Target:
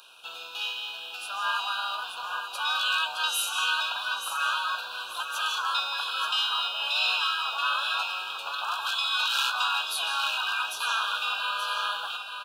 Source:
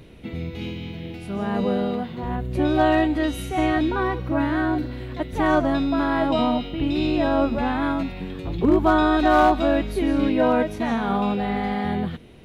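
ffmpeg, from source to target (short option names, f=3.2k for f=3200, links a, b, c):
-filter_complex "[0:a]afftfilt=real='re*lt(hypot(re,im),0.126)':imag='im*lt(hypot(re,im),0.126)':win_size=1024:overlap=0.75,highpass=f=1k:w=0.5412,highpass=f=1k:w=1.3066,asplit=2[a][b];[b]aeval=exprs='sgn(val(0))*max(abs(val(0))-0.00168,0)':c=same,volume=-4dB[c];[a][c]amix=inputs=2:normalize=0,asuperstop=centerf=2000:order=20:qfactor=2.4,aecho=1:1:880|1760|2640|3520:0.398|0.135|0.046|0.0156,volume=6.5dB"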